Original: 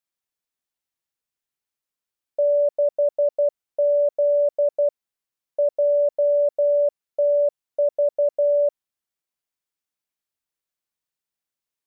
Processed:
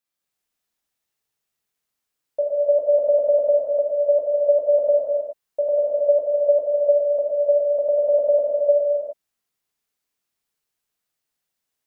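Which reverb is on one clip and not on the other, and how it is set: non-linear reverb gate 0.45 s flat, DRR -6 dB

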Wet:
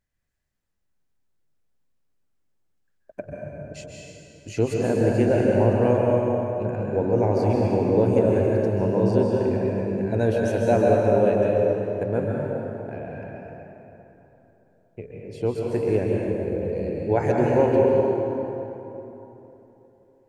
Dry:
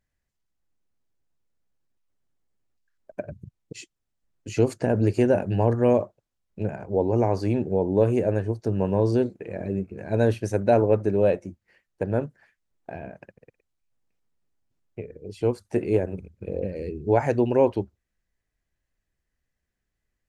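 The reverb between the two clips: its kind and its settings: plate-style reverb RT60 3.4 s, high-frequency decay 0.6×, pre-delay 0.12 s, DRR -3 dB; gain -2 dB

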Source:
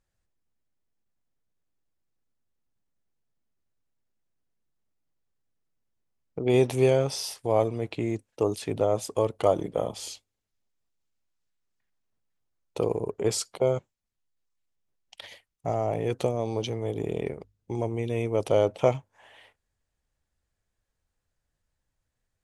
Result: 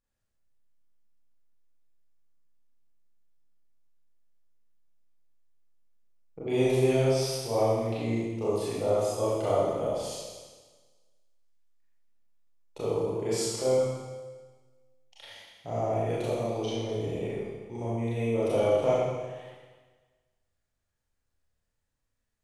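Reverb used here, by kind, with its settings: Schroeder reverb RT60 1.4 s, combs from 27 ms, DRR -9.5 dB; gain -11 dB

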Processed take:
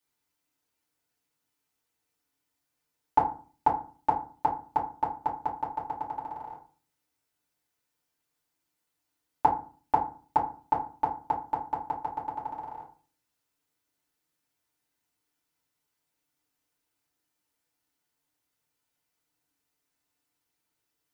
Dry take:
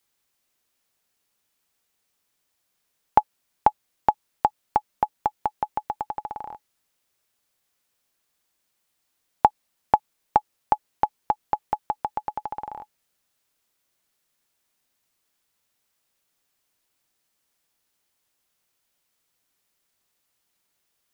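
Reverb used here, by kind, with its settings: FDN reverb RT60 0.39 s, low-frequency decay 1.4×, high-frequency decay 0.55×, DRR -6.5 dB; gain -12.5 dB

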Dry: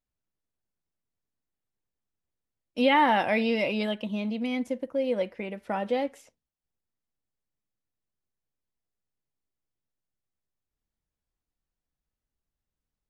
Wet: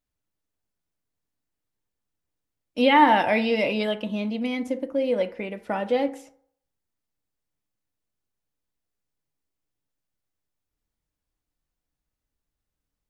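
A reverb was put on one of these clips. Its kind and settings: FDN reverb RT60 0.62 s, low-frequency decay 0.8×, high-frequency decay 0.4×, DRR 10 dB; gain +3 dB

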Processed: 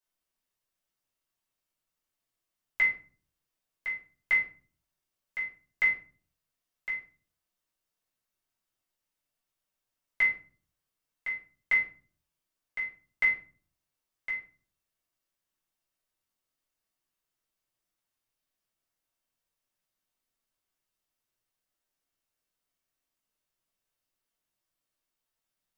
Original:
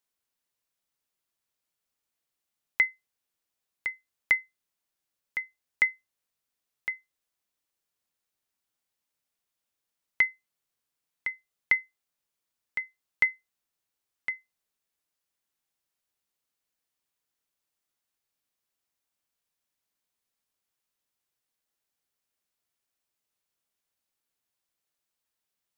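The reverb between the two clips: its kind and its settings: shoebox room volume 300 m³, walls furnished, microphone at 5.3 m; gain -9.5 dB

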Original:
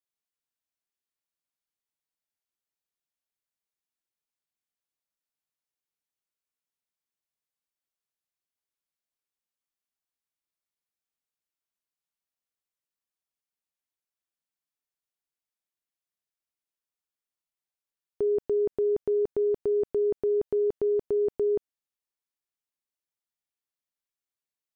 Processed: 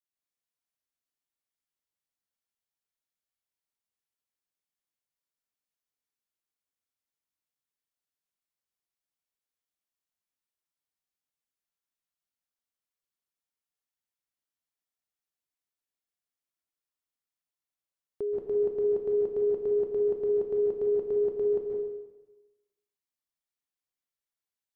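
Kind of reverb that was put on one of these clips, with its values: plate-style reverb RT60 1.1 s, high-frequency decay 0.9×, pre-delay 0.12 s, DRR -1.5 dB; gain -6 dB

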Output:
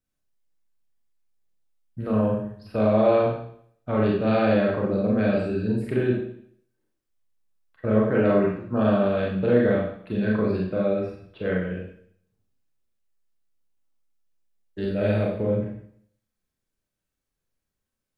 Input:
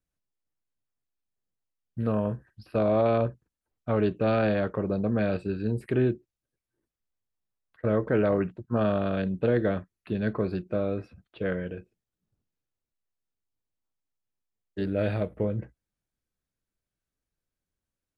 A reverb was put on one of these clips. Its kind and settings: Schroeder reverb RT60 0.62 s, combs from 29 ms, DRR -3.5 dB; gain -1 dB

